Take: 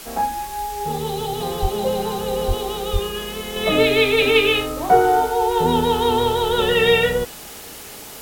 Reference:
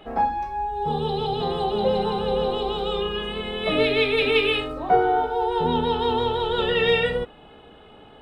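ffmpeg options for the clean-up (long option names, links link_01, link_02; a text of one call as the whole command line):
ffmpeg -i in.wav -filter_complex "[0:a]asplit=3[link_01][link_02][link_03];[link_01]afade=type=out:start_time=1.61:duration=0.02[link_04];[link_02]highpass=frequency=140:width=0.5412,highpass=frequency=140:width=1.3066,afade=type=in:start_time=1.61:duration=0.02,afade=type=out:start_time=1.73:duration=0.02[link_05];[link_03]afade=type=in:start_time=1.73:duration=0.02[link_06];[link_04][link_05][link_06]amix=inputs=3:normalize=0,asplit=3[link_07][link_08][link_09];[link_07]afade=type=out:start_time=2.47:duration=0.02[link_10];[link_08]highpass=frequency=140:width=0.5412,highpass=frequency=140:width=1.3066,afade=type=in:start_time=2.47:duration=0.02,afade=type=out:start_time=2.59:duration=0.02[link_11];[link_09]afade=type=in:start_time=2.59:duration=0.02[link_12];[link_10][link_11][link_12]amix=inputs=3:normalize=0,asplit=3[link_13][link_14][link_15];[link_13]afade=type=out:start_time=2.92:duration=0.02[link_16];[link_14]highpass=frequency=140:width=0.5412,highpass=frequency=140:width=1.3066,afade=type=in:start_time=2.92:duration=0.02,afade=type=out:start_time=3.04:duration=0.02[link_17];[link_15]afade=type=in:start_time=3.04:duration=0.02[link_18];[link_16][link_17][link_18]amix=inputs=3:normalize=0,afwtdn=0.014,asetnsamples=nb_out_samples=441:pad=0,asendcmd='3.56 volume volume -4.5dB',volume=0dB" out.wav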